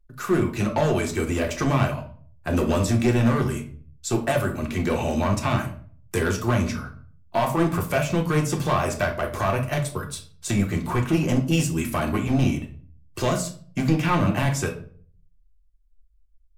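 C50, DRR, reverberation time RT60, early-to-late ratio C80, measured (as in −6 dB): 11.0 dB, 1.5 dB, 0.50 s, 15.5 dB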